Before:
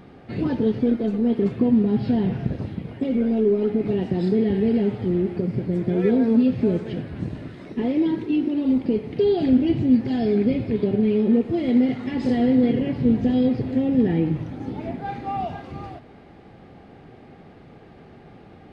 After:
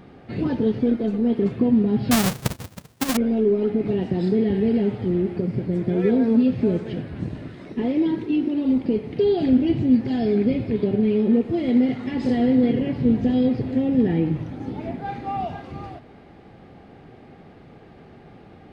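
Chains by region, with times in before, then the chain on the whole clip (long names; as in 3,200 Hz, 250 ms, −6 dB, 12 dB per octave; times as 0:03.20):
0:02.11–0:03.17: each half-wave held at its own peak + high-shelf EQ 3,700 Hz +9.5 dB + expander for the loud parts 2.5 to 1, over −31 dBFS
whole clip: no processing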